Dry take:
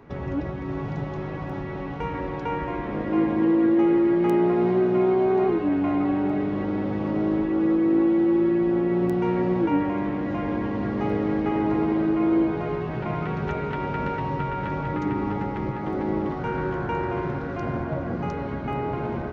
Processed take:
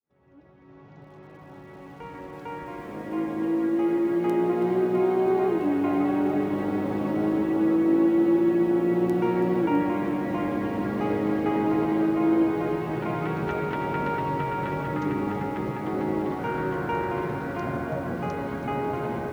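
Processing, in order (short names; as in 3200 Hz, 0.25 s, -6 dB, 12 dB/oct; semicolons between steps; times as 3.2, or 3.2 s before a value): opening faded in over 6.12 s; HPF 160 Hz 6 dB/oct; lo-fi delay 0.328 s, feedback 80%, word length 8-bit, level -13 dB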